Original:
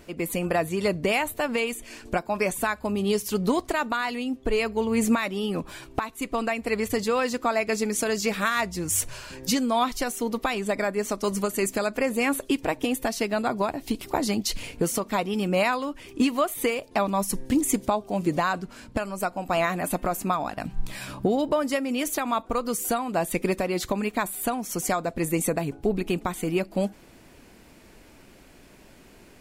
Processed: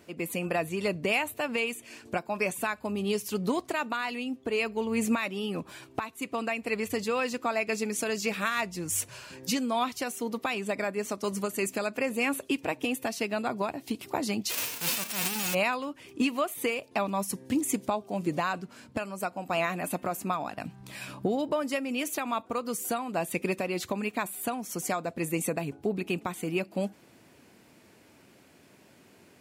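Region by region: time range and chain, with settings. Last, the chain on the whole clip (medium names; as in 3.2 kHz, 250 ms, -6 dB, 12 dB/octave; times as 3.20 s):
14.49–15.53 s: formants flattened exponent 0.1 + transient shaper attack -9 dB, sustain +11 dB
whole clip: high-pass 89 Hz 24 dB/octave; dynamic bell 2.6 kHz, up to +7 dB, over -49 dBFS, Q 5.2; trim -5 dB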